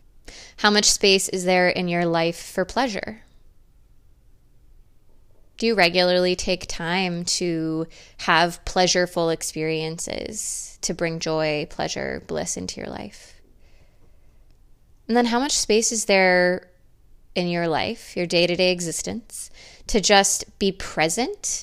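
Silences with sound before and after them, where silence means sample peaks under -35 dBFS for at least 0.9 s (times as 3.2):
3.15–5.59
13.24–15.09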